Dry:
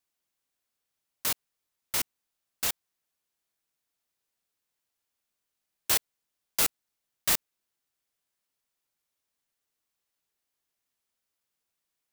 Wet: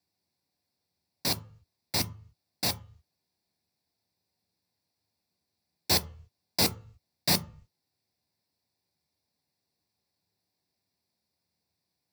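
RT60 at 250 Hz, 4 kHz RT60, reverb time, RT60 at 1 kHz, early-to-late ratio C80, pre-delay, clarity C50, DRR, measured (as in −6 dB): 0.45 s, 0.35 s, 0.45 s, 0.45 s, 23.5 dB, 3 ms, 19.0 dB, 9.5 dB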